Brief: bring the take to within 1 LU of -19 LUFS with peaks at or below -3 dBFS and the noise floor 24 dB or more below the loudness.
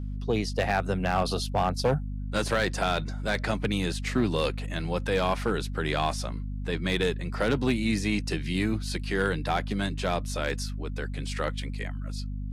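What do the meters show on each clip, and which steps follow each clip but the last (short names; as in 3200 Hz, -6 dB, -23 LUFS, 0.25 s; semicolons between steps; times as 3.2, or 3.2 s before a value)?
clipped 0.4%; flat tops at -17.0 dBFS; hum 50 Hz; harmonics up to 250 Hz; hum level -31 dBFS; loudness -29.0 LUFS; peak -17.0 dBFS; loudness target -19.0 LUFS
-> clip repair -17 dBFS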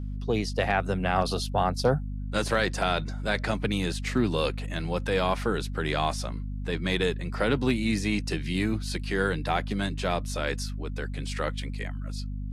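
clipped 0.0%; hum 50 Hz; harmonics up to 250 Hz; hum level -31 dBFS
-> de-hum 50 Hz, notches 5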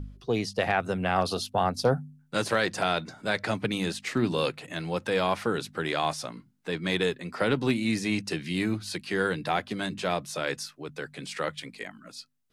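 hum none; loudness -29.0 LUFS; peak -10.5 dBFS; loudness target -19.0 LUFS
-> gain +10 dB; limiter -3 dBFS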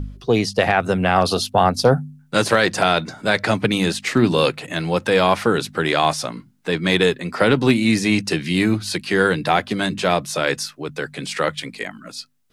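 loudness -19.5 LUFS; peak -3.0 dBFS; noise floor -51 dBFS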